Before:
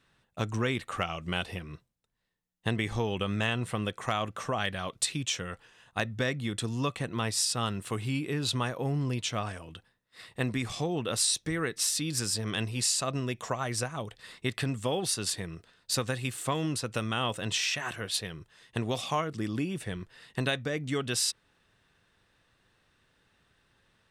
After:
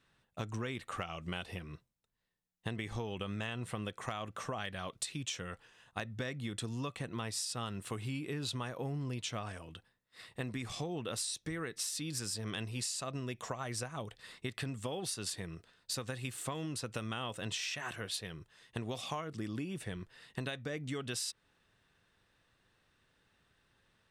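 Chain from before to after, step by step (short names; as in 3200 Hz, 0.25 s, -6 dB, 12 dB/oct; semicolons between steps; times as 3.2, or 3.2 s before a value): compressor, threshold -31 dBFS, peak gain reduction 8 dB; gain -4 dB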